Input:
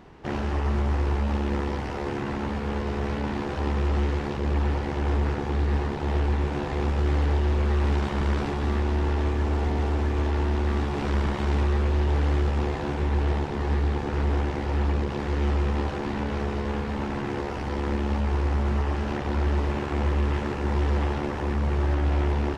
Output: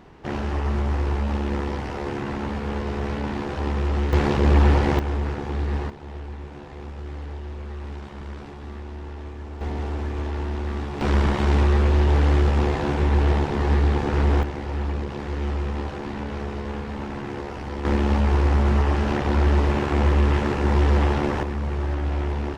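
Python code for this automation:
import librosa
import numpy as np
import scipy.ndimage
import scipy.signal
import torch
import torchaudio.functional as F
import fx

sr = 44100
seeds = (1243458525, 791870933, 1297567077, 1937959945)

y = fx.gain(x, sr, db=fx.steps((0.0, 1.0), (4.13, 8.5), (4.99, -1.0), (5.9, -11.0), (9.61, -3.0), (11.01, 5.0), (14.43, -2.0), (17.85, 5.5), (21.43, -1.5)))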